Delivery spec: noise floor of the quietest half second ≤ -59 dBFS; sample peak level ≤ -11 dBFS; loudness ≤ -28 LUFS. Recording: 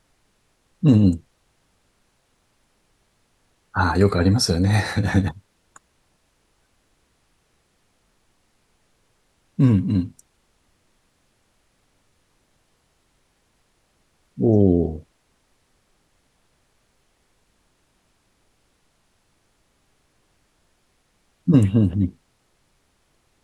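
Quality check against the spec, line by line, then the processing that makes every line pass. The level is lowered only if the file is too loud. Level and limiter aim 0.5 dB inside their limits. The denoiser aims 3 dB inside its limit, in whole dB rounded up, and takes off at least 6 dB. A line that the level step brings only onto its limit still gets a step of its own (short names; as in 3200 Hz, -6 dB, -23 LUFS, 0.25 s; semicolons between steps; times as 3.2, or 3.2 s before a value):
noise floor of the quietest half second -66 dBFS: OK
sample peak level -4.5 dBFS: fail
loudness -20.0 LUFS: fail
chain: gain -8.5 dB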